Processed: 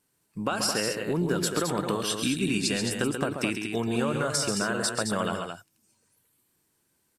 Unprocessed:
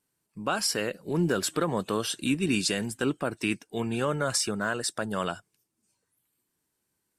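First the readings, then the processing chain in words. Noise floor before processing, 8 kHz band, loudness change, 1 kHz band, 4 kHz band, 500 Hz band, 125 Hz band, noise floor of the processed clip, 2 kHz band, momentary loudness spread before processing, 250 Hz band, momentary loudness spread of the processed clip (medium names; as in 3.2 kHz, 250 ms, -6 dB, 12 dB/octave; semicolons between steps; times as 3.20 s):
-80 dBFS, +1.5 dB, +1.0 dB, +1.0 dB, +1.5 dB, +1.0 dB, +1.0 dB, -72 dBFS, +1.0 dB, 6 LU, +1.0 dB, 5 LU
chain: compression, threshold -30 dBFS, peak gain reduction 9 dB; on a send: multi-tap echo 112/134/217 ms -18.5/-6.5/-6.5 dB; on the sum: trim +5.5 dB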